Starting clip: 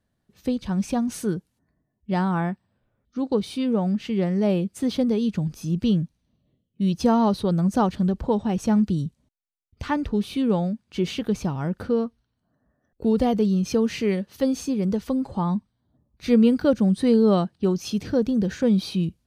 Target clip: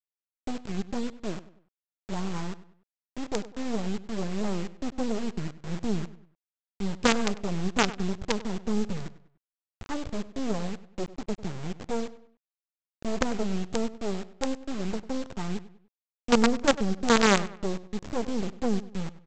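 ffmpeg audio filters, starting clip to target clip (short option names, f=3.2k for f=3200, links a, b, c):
-filter_complex "[0:a]afwtdn=0.0447,aresample=16000,acrusher=bits=3:dc=4:mix=0:aa=0.000001,aresample=44100,asplit=2[a][b];[b]adelay=98,lowpass=f=3.4k:p=1,volume=-16dB,asplit=2[c][d];[d]adelay=98,lowpass=f=3.4k:p=1,volume=0.39,asplit=2[e][f];[f]adelay=98,lowpass=f=3.4k:p=1,volume=0.39[g];[a][c][e][g]amix=inputs=4:normalize=0,volume=-3.5dB"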